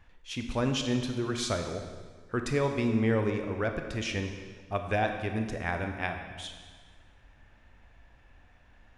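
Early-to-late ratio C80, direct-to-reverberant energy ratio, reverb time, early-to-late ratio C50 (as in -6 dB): 7.5 dB, 5.0 dB, 1.6 s, 6.0 dB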